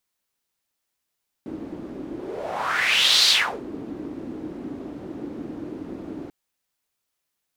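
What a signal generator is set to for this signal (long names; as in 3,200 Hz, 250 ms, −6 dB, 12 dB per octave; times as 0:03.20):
pass-by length 4.84 s, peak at 0:01.82, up 1.25 s, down 0.37 s, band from 300 Hz, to 4,200 Hz, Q 4, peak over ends 18 dB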